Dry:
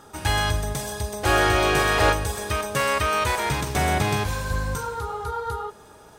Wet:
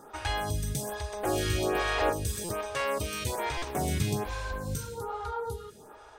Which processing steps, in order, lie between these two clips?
dynamic bell 1.4 kHz, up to -6 dB, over -36 dBFS, Q 0.85; in parallel at -2 dB: compression, threshold -29 dBFS, peak gain reduction 12 dB; on the sum: buffer glitch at 2.44/3.57 s, samples 256, times 8; lamp-driven phase shifter 1.2 Hz; trim -5 dB

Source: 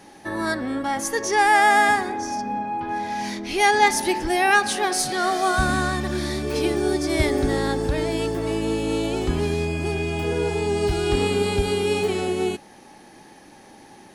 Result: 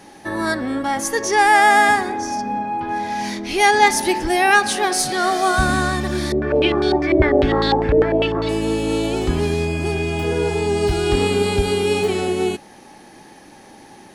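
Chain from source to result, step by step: 6.32–8.49 s: step-sequenced low-pass 10 Hz 470–4000 Hz; trim +3.5 dB

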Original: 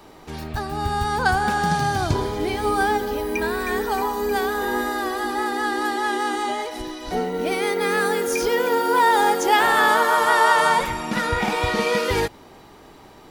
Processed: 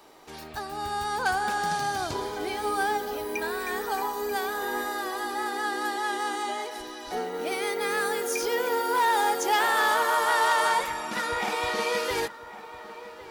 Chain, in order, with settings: hard clipper -12 dBFS, distortion -21 dB; tone controls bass -13 dB, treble +3 dB; filtered feedback delay 1106 ms, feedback 45%, low-pass 2.2 kHz, level -15 dB; trim -5.5 dB

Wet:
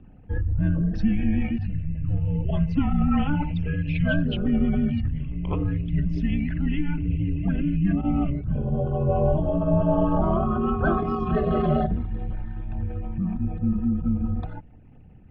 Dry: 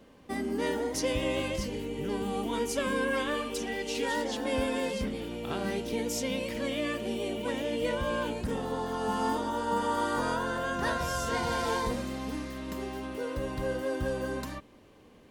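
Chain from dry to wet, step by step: resonances exaggerated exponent 2; mistuned SSB -300 Hz 160–3400 Hz; trim +9 dB

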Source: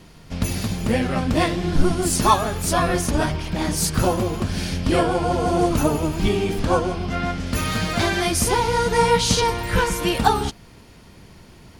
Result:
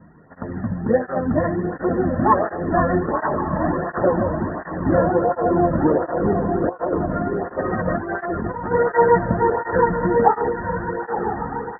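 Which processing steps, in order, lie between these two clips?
one-sided wavefolder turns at -8 dBFS; Chebyshev low-pass 1.9 kHz, order 10; echo that smears into a reverb 1020 ms, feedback 44%, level -4.5 dB; 6.69–8.72 s: compressor with a negative ratio -23 dBFS, ratio -0.5; dynamic bell 530 Hz, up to +6 dB, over -34 dBFS, Q 2.4; cancelling through-zero flanger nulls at 1.4 Hz, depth 2.8 ms; trim +2.5 dB

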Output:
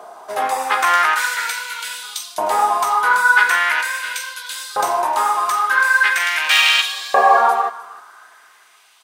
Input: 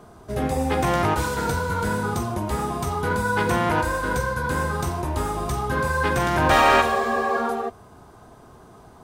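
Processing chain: delay 307 ms -19 dB; wavefolder -8.5 dBFS; LFO high-pass saw up 0.42 Hz 660–4100 Hz; trim +7.5 dB

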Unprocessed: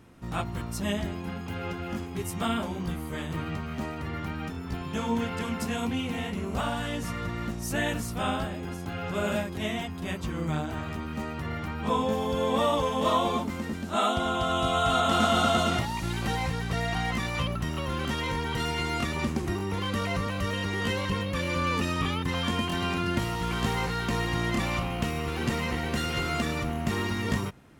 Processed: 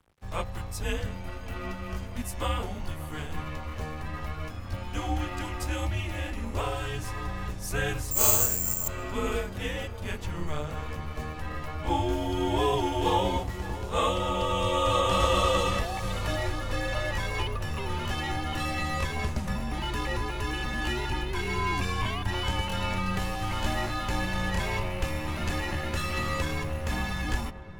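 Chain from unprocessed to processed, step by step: crossover distortion -50 dBFS; frequency shift -160 Hz; 8.11–8.88 s: careless resampling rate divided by 6×, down filtered, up zero stuff; on a send: filtered feedback delay 578 ms, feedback 81%, low-pass 1.8 kHz, level -16 dB

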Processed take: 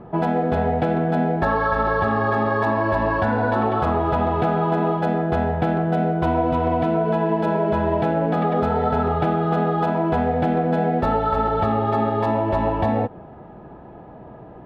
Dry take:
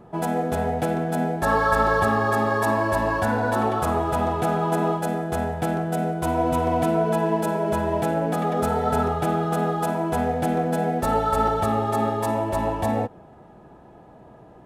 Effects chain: dynamic bell 4.1 kHz, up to +4 dB, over -42 dBFS, Q 1; compression, threshold -23 dBFS, peak gain reduction 8 dB; distance through air 340 m; trim +7.5 dB

